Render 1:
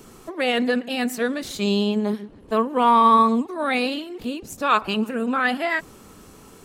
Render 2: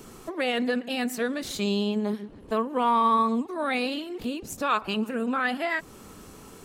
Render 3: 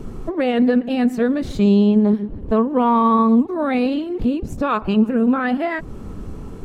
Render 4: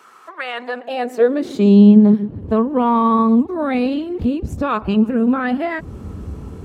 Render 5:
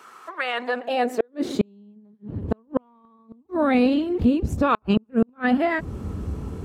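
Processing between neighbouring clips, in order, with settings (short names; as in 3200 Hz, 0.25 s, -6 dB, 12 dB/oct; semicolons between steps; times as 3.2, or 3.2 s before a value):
compressor 1.5:1, threshold -31 dBFS, peak gain reduction 7 dB
tilt -4 dB/oct; gain +4.5 dB
high-pass sweep 1300 Hz -> 70 Hz, 0.41–2.67
flipped gate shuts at -8 dBFS, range -41 dB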